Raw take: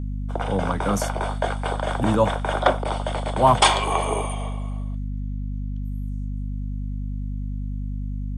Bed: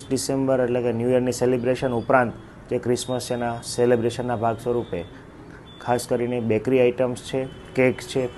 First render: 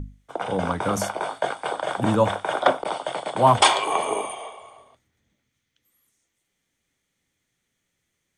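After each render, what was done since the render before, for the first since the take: hum notches 50/100/150/200/250 Hz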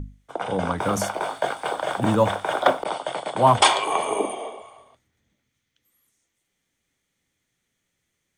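0.78–2.84 s: companding laws mixed up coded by mu; 4.19–4.62 s: FFT filter 130 Hz 0 dB, 200 Hz +10 dB, 310 Hz +14 dB, 460 Hz +8 dB, 1.1 kHz -1 dB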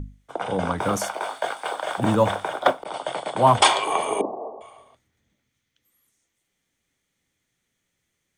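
0.97–1.98 s: high-pass 570 Hz 6 dB/octave; 2.48–2.94 s: upward expansion, over -31 dBFS; 4.21–4.61 s: steep low-pass 1 kHz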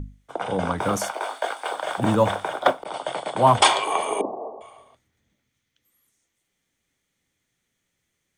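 1.11–1.71 s: high-pass 250 Hz 24 dB/octave; 3.82–4.25 s: high-pass 240 Hz 6 dB/octave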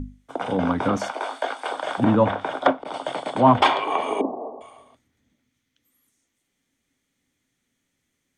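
low-pass that closes with the level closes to 2.7 kHz, closed at -18 dBFS; peaking EQ 260 Hz +11 dB 0.36 oct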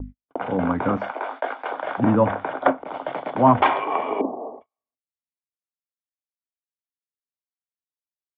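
low-pass 2.5 kHz 24 dB/octave; gate -37 dBFS, range -44 dB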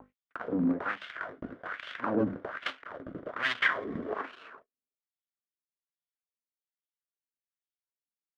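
comb filter that takes the minimum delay 0.58 ms; LFO band-pass sine 1.2 Hz 240–3300 Hz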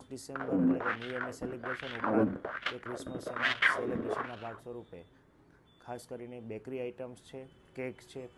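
add bed -20.5 dB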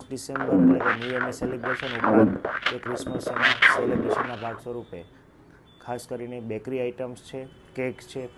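trim +10 dB; peak limiter -3 dBFS, peak gain reduction 1.5 dB

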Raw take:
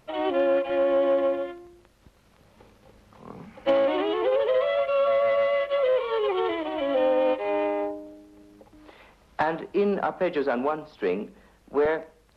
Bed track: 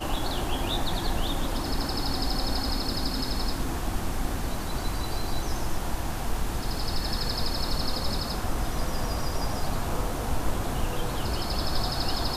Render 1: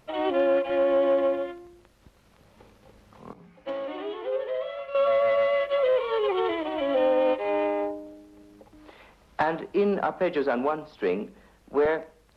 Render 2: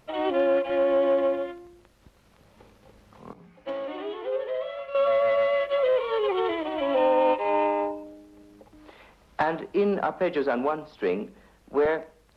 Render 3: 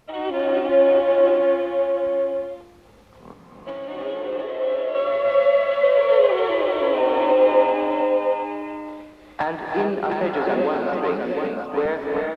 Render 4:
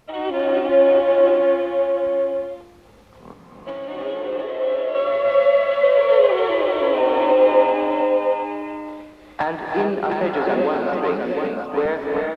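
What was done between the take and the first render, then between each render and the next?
3.33–4.95 s: feedback comb 58 Hz, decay 0.43 s, harmonics odd, mix 80%
6.82–8.04 s: small resonant body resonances 950/2600 Hz, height 18 dB, ringing for 75 ms
delay 709 ms -5 dB; gated-style reverb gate 420 ms rising, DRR -0.5 dB
trim +1.5 dB

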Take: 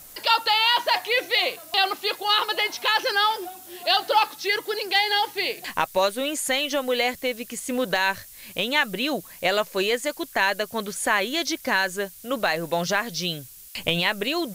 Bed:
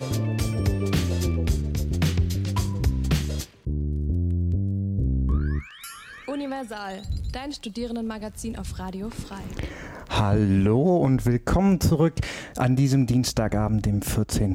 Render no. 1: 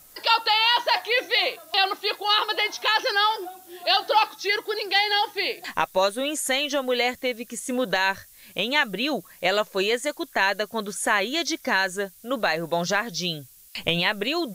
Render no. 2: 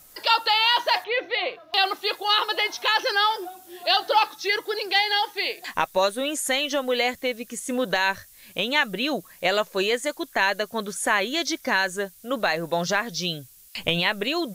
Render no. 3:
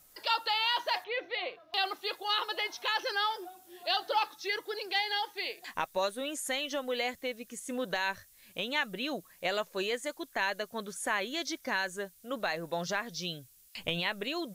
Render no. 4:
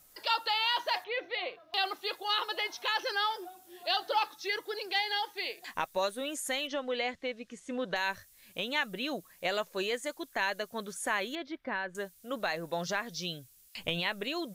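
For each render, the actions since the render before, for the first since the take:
noise print and reduce 6 dB
1.04–1.74 s: distance through air 290 m; 5.02–5.75 s: bass shelf 290 Hz -8.5 dB
trim -9.5 dB
6.67–7.96 s: low-pass 4.5 kHz; 11.35–11.95 s: distance through air 440 m

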